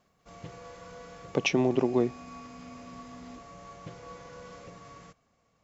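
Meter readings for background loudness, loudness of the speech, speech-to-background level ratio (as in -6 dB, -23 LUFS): -47.0 LUFS, -27.5 LUFS, 19.5 dB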